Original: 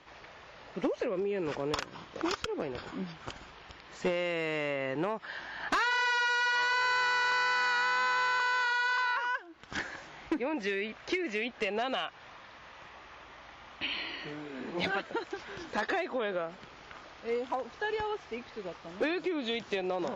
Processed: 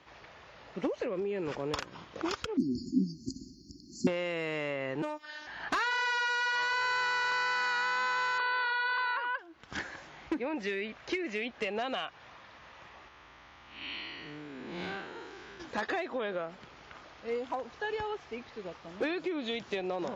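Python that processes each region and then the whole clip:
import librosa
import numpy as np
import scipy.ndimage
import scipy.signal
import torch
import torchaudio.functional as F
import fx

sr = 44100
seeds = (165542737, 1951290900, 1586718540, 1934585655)

y = fx.chain(x, sr, fx.brickwall_bandstop(low_hz=380.0, high_hz=4200.0),
    fx.high_shelf(hz=2500.0, db=9.0),
    fx.small_body(hz=(250.0, 2200.0, 3600.0), ring_ms=55, db=18), at=(2.57, 4.07))
y = fx.chain(y, sr, fx.highpass(hz=130.0, slope=12),
    fx.bass_treble(bass_db=0, treble_db=10),
    fx.robotise(hz=303.0), at=(5.02, 5.47))
y = fx.chain(y, sr, fx.brickwall_bandpass(low_hz=230.0, high_hz=4800.0),
    fx.low_shelf(hz=320.0, db=7.0), at=(8.38, 9.39))
y = fx.chain(y, sr, fx.spec_blur(span_ms=162.0),
    fx.peak_eq(hz=600.0, db=-4.0, octaves=0.73), at=(13.08, 15.6))
y = scipy.signal.sosfilt(scipy.signal.butter(2, 47.0, 'highpass', fs=sr, output='sos'), y)
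y = fx.low_shelf(y, sr, hz=150.0, db=3.5)
y = F.gain(torch.from_numpy(y), -2.0).numpy()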